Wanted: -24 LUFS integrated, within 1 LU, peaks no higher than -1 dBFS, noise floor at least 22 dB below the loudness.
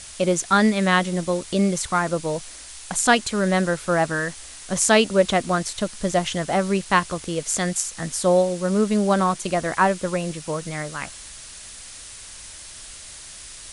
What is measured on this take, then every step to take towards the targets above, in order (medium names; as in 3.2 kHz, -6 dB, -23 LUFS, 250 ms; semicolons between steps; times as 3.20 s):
noise floor -40 dBFS; noise floor target -44 dBFS; loudness -22.0 LUFS; peak level -3.0 dBFS; loudness target -24.0 LUFS
-> noise print and reduce 6 dB; trim -2 dB